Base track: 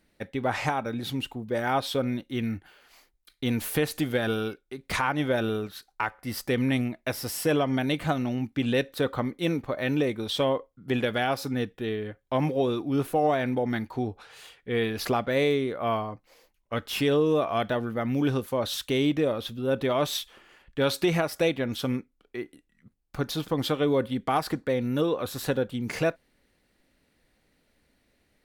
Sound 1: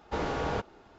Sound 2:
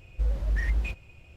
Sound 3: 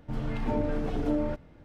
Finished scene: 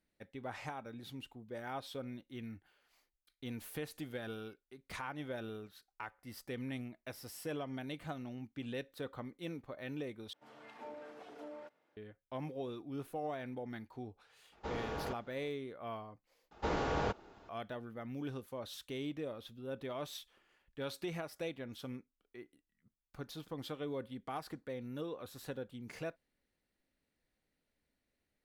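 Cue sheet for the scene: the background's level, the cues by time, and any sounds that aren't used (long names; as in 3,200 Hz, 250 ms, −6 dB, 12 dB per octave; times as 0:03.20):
base track −16.5 dB
0:10.33: overwrite with 3 −13 dB + high-pass filter 580 Hz
0:14.52: mix in 1 −9.5 dB
0:16.51: overwrite with 1 −3 dB
not used: 2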